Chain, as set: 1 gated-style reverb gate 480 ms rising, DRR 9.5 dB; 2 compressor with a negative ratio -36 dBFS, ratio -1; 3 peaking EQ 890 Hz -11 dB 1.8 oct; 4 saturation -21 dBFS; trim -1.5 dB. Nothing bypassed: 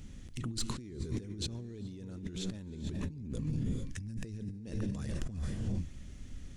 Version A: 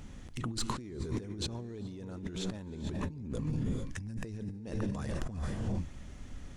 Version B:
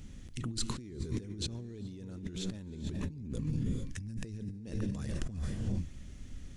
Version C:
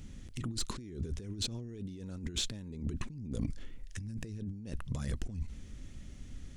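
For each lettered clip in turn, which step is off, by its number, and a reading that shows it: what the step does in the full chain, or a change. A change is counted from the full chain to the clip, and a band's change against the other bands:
3, 1 kHz band +8.0 dB; 4, distortion -26 dB; 1, momentary loudness spread change +5 LU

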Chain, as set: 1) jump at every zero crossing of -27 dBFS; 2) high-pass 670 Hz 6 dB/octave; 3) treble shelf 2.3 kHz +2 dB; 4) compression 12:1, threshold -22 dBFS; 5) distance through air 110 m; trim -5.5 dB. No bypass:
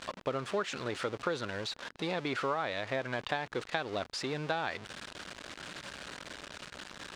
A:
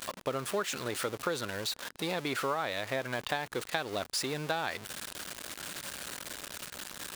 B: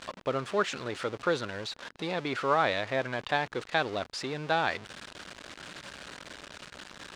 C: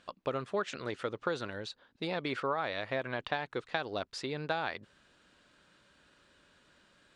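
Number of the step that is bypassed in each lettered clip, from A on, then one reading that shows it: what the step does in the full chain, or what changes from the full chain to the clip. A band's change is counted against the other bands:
5, 8 kHz band +9.5 dB; 4, mean gain reduction 2.0 dB; 1, distortion -12 dB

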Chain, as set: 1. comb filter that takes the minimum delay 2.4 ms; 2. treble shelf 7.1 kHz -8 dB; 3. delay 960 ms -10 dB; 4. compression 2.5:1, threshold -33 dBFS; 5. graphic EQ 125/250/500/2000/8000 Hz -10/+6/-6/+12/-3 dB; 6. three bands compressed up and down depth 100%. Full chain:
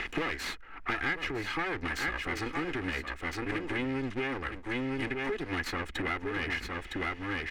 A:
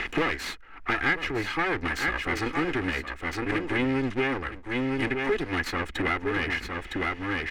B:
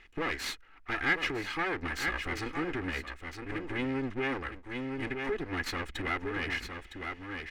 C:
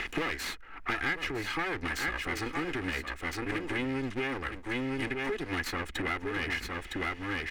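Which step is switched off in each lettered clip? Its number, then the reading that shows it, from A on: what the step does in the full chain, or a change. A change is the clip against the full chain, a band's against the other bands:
4, mean gain reduction 3.5 dB; 6, crest factor change +3.0 dB; 2, 8 kHz band +3.0 dB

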